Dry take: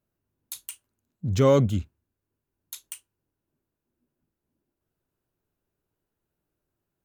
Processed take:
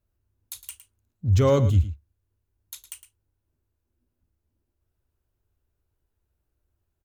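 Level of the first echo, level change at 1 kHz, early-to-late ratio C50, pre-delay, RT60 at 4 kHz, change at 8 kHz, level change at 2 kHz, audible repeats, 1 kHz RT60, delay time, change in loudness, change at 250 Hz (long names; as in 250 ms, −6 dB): −13.0 dB, −1.0 dB, no reverb audible, no reverb audible, no reverb audible, −1.0 dB, −1.0 dB, 1, no reverb audible, 110 ms, +1.0 dB, −2.5 dB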